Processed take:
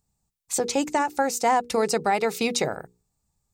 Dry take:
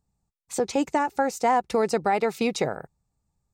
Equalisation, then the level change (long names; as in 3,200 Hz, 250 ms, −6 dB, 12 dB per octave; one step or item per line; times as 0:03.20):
high-shelf EQ 3,500 Hz +9.5 dB
mains-hum notches 60/120/180/240/300/360/420/480 Hz
0.0 dB